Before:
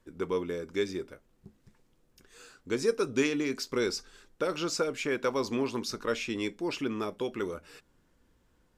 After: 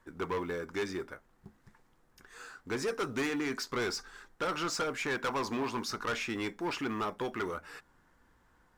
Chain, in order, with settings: band shelf 1200 Hz +9 dB; in parallel at -10 dB: short-mantissa float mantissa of 2-bit; on the sum: soft clip -25 dBFS, distortion -8 dB; gain -3 dB

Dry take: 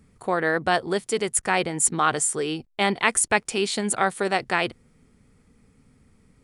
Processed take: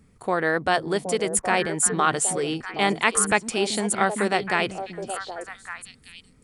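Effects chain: delay with a stepping band-pass 0.385 s, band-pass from 210 Hz, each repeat 1.4 oct, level -3 dB

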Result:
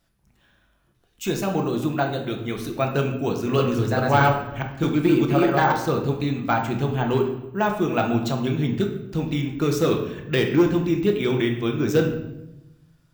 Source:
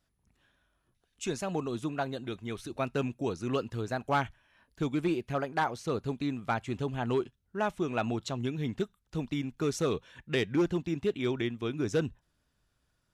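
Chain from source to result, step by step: 3.37–5.72 reverse delay 0.209 s, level -1 dB; de-hum 90.93 Hz, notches 31; de-esser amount 85%; shoebox room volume 300 m³, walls mixed, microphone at 0.78 m; careless resampling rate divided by 2×, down none, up hold; gain +7.5 dB

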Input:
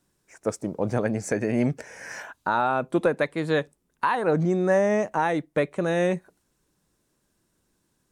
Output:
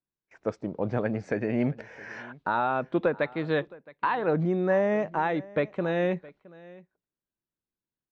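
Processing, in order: LPF 4000 Hz 24 dB/oct; gate with hold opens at -46 dBFS; echo 0.667 s -21.5 dB; gain -3 dB

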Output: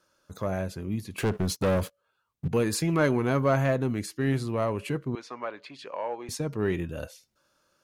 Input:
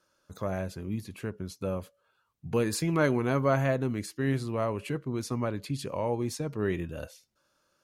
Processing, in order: 1.18–2.48 sample leveller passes 3; in parallel at -9 dB: overloaded stage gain 26 dB; 5.15–6.29 on the sum: BPF 640–3200 Hz

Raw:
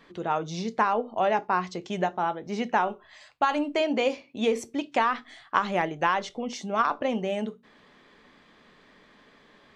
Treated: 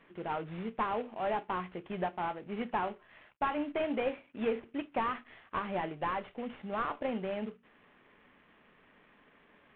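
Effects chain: CVSD 16 kbps; 0.93–1.39 transient shaper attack -7 dB, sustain +2 dB; gain -6.5 dB

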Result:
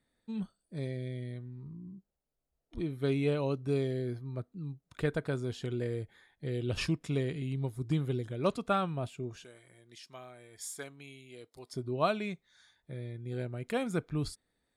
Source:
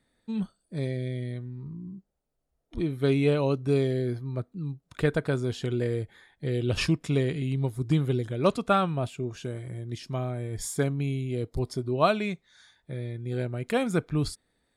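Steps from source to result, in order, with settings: 9.44–11.73 HPF 1400 Hz 6 dB/oct; gain -6.5 dB

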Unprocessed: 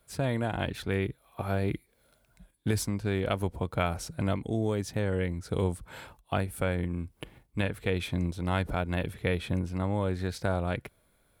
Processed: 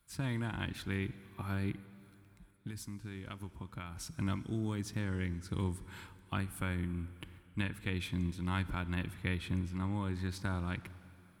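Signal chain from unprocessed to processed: band shelf 560 Hz -12 dB 1.1 oct; 1.71–3.97 compressor 4:1, threshold -37 dBFS, peak gain reduction 11.5 dB; plate-style reverb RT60 3.2 s, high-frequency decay 0.85×, DRR 15 dB; gain -5 dB

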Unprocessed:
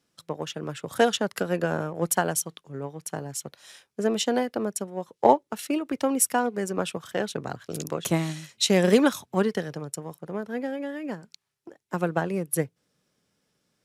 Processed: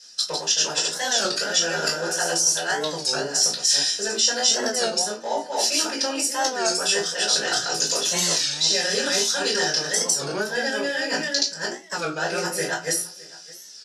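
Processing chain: reverse delay 0.271 s, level -2.5 dB; resonator 57 Hz, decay 0.23 s, harmonics all, mix 70%; de-esser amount 80%; notch comb 1100 Hz; in parallel at +1 dB: limiter -20 dBFS, peak gain reduction 10.5 dB; on the sum: weighting filter ITU-R 468; reverse; compressor 12:1, threshold -35 dBFS, peak gain reduction 18.5 dB; reverse; bell 5300 Hz +14.5 dB 0.79 oct; echo 0.614 s -22 dB; reverb RT60 0.25 s, pre-delay 4 ms, DRR -6.5 dB; record warp 33 1/3 rpm, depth 160 cents; gain +1.5 dB

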